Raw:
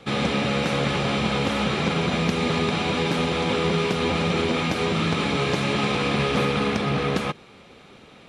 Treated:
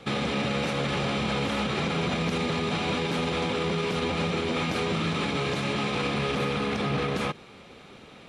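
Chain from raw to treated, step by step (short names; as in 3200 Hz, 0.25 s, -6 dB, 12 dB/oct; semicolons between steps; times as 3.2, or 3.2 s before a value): limiter -19 dBFS, peak gain reduction 8.5 dB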